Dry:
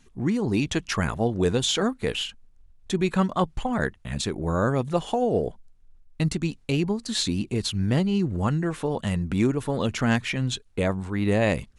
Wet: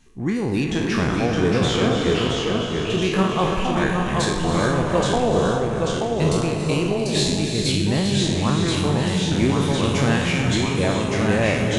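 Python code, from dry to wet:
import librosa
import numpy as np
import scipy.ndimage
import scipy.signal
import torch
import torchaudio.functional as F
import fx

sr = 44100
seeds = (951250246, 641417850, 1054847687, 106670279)

y = fx.spec_trails(x, sr, decay_s=0.75)
y = fx.lowpass(y, sr, hz=2700.0, slope=6, at=(0.64, 3.02))
y = y + 10.0 ** (-13.0 / 20.0) * np.pad(y, (int(283 * sr / 1000.0), 0))[:len(y)]
y = fx.rev_gated(y, sr, seeds[0], gate_ms=450, shape='rising', drr_db=5.0)
y = fx.echo_pitch(y, sr, ms=574, semitones=-1, count=2, db_per_echo=-3.0)
y = fx.notch(y, sr, hz=1400.0, q=25.0)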